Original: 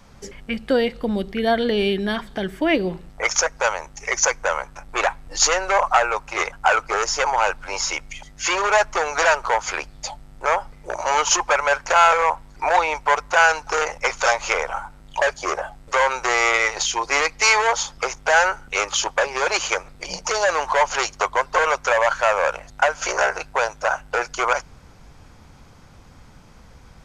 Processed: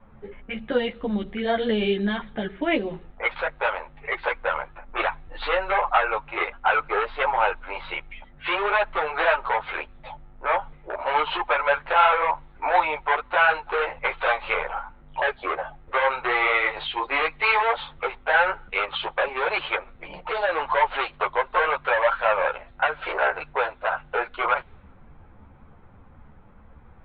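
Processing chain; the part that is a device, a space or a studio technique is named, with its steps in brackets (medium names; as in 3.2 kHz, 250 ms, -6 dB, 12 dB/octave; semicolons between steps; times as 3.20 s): level-controlled noise filter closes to 1.5 kHz, open at -16 dBFS; steep low-pass 4 kHz 96 dB/octave; string-machine ensemble chorus (three-phase chorus; low-pass 4.6 kHz 12 dB/octave)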